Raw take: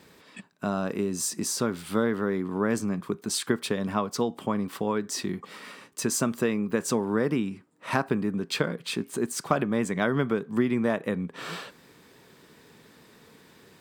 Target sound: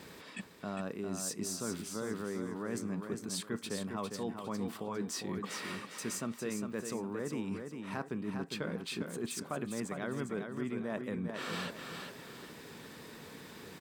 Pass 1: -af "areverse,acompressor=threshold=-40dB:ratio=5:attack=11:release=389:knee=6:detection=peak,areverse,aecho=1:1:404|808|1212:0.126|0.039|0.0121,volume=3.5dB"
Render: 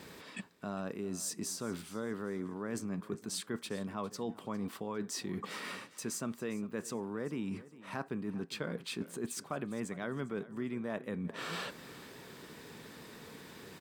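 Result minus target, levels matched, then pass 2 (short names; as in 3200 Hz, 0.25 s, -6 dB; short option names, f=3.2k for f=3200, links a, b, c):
echo-to-direct -12 dB
-af "areverse,acompressor=threshold=-40dB:ratio=5:attack=11:release=389:knee=6:detection=peak,areverse,aecho=1:1:404|808|1212|1616:0.501|0.155|0.0482|0.0149,volume=3.5dB"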